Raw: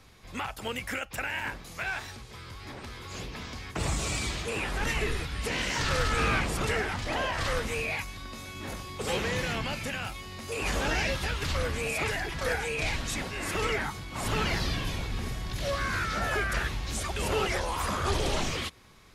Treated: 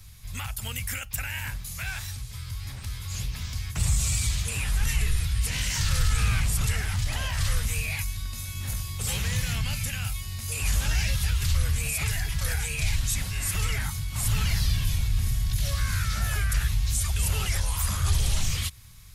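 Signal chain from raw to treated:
drawn EQ curve 110 Hz 0 dB, 340 Hz −26 dB, 5,200 Hz −6 dB, 13,000 Hz +5 dB
in parallel at +1 dB: brickwall limiter −31 dBFS, peak gain reduction 10.5 dB
on the sum: level +5 dB

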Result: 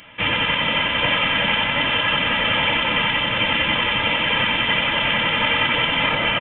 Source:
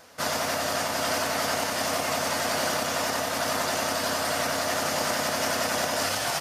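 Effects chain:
spectral tilt +4 dB per octave
comb filter 2.8 ms, depth 76%
voice inversion scrambler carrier 3,800 Hz
level +5.5 dB

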